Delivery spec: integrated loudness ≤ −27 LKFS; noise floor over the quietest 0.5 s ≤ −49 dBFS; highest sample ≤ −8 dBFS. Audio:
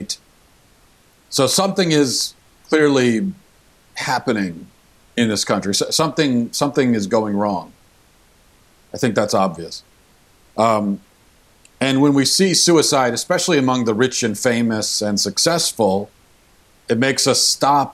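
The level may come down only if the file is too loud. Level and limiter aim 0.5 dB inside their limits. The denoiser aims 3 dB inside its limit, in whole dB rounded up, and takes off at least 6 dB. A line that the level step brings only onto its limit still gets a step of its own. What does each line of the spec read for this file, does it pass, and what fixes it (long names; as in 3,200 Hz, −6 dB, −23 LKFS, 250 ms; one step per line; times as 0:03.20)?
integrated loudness −17.0 LKFS: out of spec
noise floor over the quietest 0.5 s −53 dBFS: in spec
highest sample −3.0 dBFS: out of spec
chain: level −10.5 dB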